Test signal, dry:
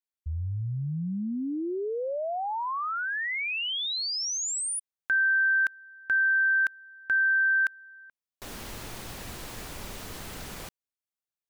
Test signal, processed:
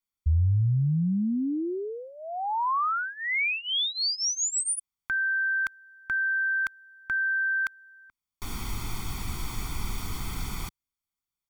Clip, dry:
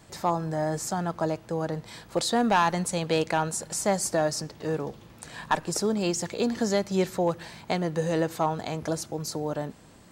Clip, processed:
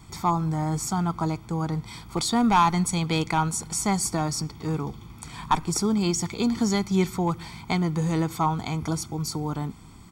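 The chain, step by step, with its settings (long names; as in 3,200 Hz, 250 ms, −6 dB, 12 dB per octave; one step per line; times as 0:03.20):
low-shelf EQ 88 Hz +8.5 dB
comb filter 0.9 ms, depth 85%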